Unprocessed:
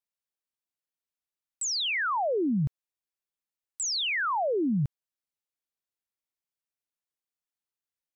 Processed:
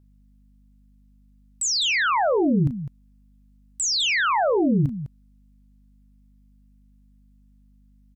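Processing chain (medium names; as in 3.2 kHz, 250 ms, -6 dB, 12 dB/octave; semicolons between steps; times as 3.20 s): hum 50 Hz, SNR 29 dB; loudspeakers at several distances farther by 12 m -10 dB, 70 m -11 dB; trim +6 dB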